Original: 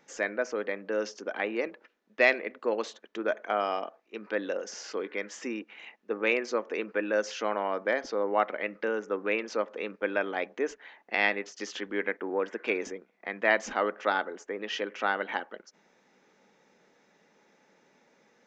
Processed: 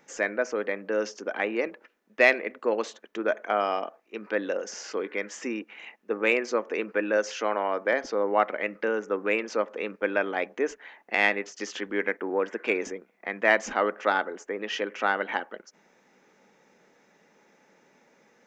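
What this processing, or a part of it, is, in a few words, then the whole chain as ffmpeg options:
exciter from parts: -filter_complex "[0:a]asplit=2[s0][s1];[s1]highpass=f=4100:p=1,asoftclip=type=tanh:threshold=0.0473,highpass=f=2900:w=0.5412,highpass=f=2900:w=1.3066,volume=0.473[s2];[s0][s2]amix=inputs=2:normalize=0,asettb=1/sr,asplit=3[s3][s4][s5];[s3]atrim=end=7.174[s6];[s4]atrim=start=7.17:end=7.93,asetpts=PTS-STARTPTS,afade=t=in:d=0.004:c=qsin,afade=t=out:st=0.756:d=0.004:c=qsin,highpass=220[s7];[s5]atrim=start=7.926[s8];[s6][s7]acrossfade=d=0.004:c1=hsin:c2=qsin[s9];[s9][s8]acrossfade=d=0.004:c1=qsin:c2=hsin,volume=1.41"

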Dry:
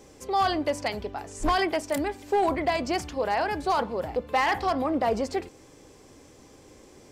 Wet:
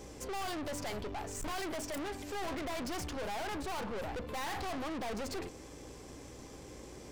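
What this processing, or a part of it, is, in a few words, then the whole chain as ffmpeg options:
valve amplifier with mains hum: -af "aeval=exprs='(tanh(112*val(0)+0.45)-tanh(0.45))/112':c=same,aeval=exprs='val(0)+0.00112*(sin(2*PI*60*n/s)+sin(2*PI*2*60*n/s)/2+sin(2*PI*3*60*n/s)/3+sin(2*PI*4*60*n/s)/4+sin(2*PI*5*60*n/s)/5)':c=same,volume=1.5"

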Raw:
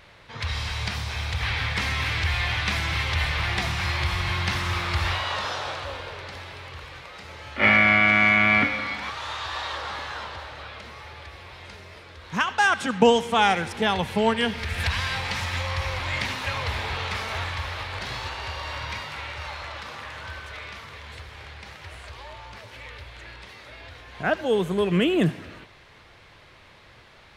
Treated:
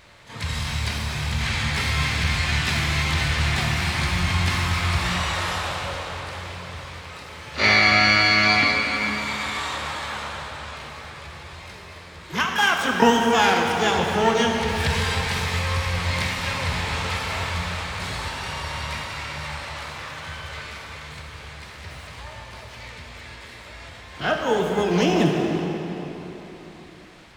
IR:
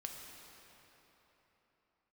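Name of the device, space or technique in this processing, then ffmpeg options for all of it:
shimmer-style reverb: -filter_complex "[0:a]asplit=2[s0][s1];[s1]asetrate=88200,aresample=44100,atempo=0.5,volume=0.447[s2];[s0][s2]amix=inputs=2:normalize=0[s3];[1:a]atrim=start_sample=2205[s4];[s3][s4]afir=irnorm=-1:irlink=0,volume=1.58"

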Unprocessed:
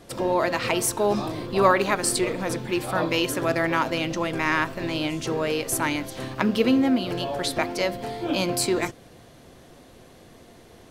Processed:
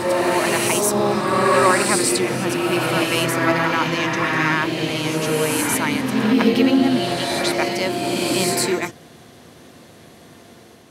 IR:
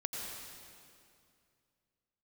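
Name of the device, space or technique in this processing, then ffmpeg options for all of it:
reverse reverb: -filter_complex "[0:a]highpass=120,equalizer=f=520:w=0.98:g=-3.5,areverse[s0];[1:a]atrim=start_sample=2205[s1];[s0][s1]afir=irnorm=-1:irlink=0,areverse,volume=1.78"

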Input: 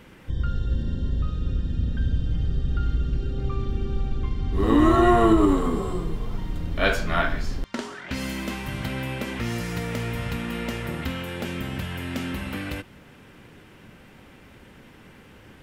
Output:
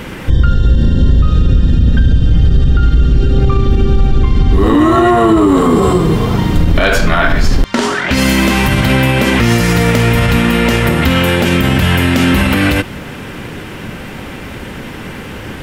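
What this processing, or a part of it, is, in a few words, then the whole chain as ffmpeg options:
loud club master: -filter_complex "[0:a]asettb=1/sr,asplit=3[s0][s1][s2];[s0]atrim=end=4.744[s3];[s1]atrim=start=4.74:end=6.55,asetpts=PTS-STARTPTS,afade=t=in:d=0.004:c=qsin,afade=t=out:st=1.806:d=0.004:c=qsin,highpass=80[s4];[s2]atrim=start=6.546[s5];[s3][s4]acrossfade=d=0.004:c1=hsin:c2=qsin[s6];[s6][s5]acrossfade=d=0.004:c1=qsin:c2=hsin,acompressor=threshold=0.0447:ratio=1.5,asoftclip=type=hard:threshold=0.188,alimiter=level_in=15:limit=0.891:release=50:level=0:latency=1,volume=0.891"

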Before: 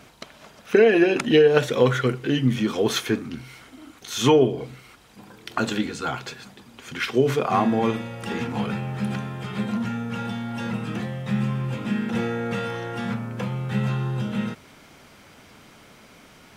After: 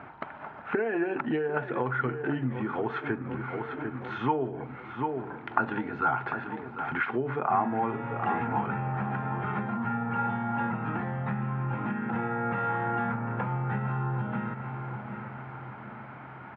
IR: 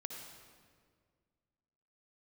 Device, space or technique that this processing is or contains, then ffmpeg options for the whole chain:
bass amplifier: -filter_complex "[0:a]asplit=2[s0][s1];[s1]adelay=745,lowpass=f=3900:p=1,volume=0.188,asplit=2[s2][s3];[s3]adelay=745,lowpass=f=3900:p=1,volume=0.46,asplit=2[s4][s5];[s5]adelay=745,lowpass=f=3900:p=1,volume=0.46,asplit=2[s6][s7];[s7]adelay=745,lowpass=f=3900:p=1,volume=0.46[s8];[s0][s2][s4][s6][s8]amix=inputs=5:normalize=0,acompressor=threshold=0.0282:ratio=4,highpass=85,equalizer=f=200:t=q:w=4:g=-5,equalizer=f=500:t=q:w=4:g=-6,equalizer=f=860:t=q:w=4:g=10,equalizer=f=1400:t=q:w=4:g=6,lowpass=f=2000:w=0.5412,lowpass=f=2000:w=1.3066,volume=1.5"

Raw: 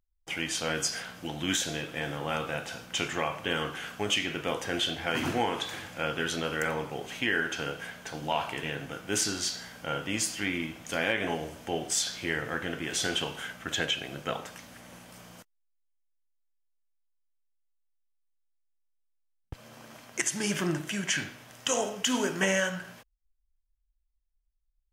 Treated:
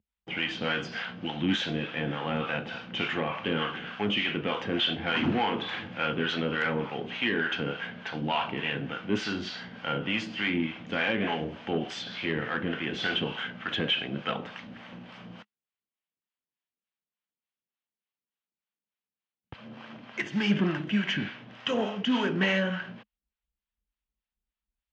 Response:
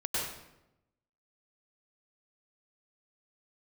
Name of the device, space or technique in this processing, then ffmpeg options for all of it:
guitar amplifier with harmonic tremolo: -filter_complex "[0:a]acrossover=split=600[s0][s1];[s0]aeval=exprs='val(0)*(1-0.7/2+0.7/2*cos(2*PI*3.4*n/s))':c=same[s2];[s1]aeval=exprs='val(0)*(1-0.7/2-0.7/2*cos(2*PI*3.4*n/s))':c=same[s3];[s2][s3]amix=inputs=2:normalize=0,asoftclip=type=tanh:threshold=0.0473,highpass=91,equalizer=f=210:t=q:w=4:g=9,equalizer=f=630:t=q:w=4:g=-3,equalizer=f=2900:t=q:w=4:g=3,lowpass=f=3600:w=0.5412,lowpass=f=3600:w=1.3066,volume=2.11"

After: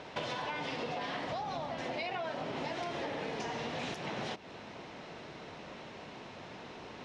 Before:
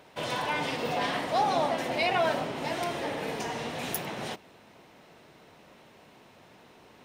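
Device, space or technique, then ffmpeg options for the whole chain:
serial compression, leveller first: -filter_complex "[0:a]acompressor=threshold=0.0251:ratio=2.5,acompressor=threshold=0.00708:ratio=6,lowpass=f=6300:w=0.5412,lowpass=f=6300:w=1.3066,asplit=3[s0][s1][s2];[s0]afade=t=out:st=1.29:d=0.02[s3];[s1]asubboost=boost=6:cutoff=160,afade=t=in:st=1.29:d=0.02,afade=t=out:st=1.81:d=0.02[s4];[s2]afade=t=in:st=1.81:d=0.02[s5];[s3][s4][s5]amix=inputs=3:normalize=0,volume=2.37"

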